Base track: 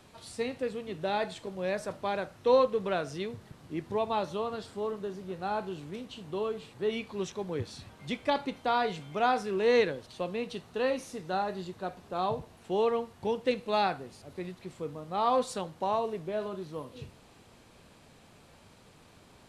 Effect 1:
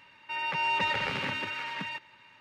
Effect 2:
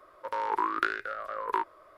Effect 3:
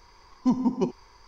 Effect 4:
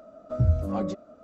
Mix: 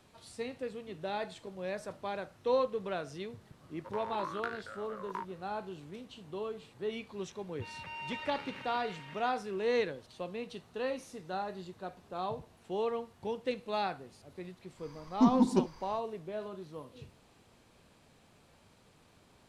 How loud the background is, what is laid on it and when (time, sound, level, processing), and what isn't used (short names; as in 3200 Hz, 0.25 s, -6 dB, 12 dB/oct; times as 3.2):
base track -6 dB
3.61 add 2 -11 dB
7.32 add 1 -14.5 dB
14.75 add 3 -2 dB, fades 0.10 s
not used: 4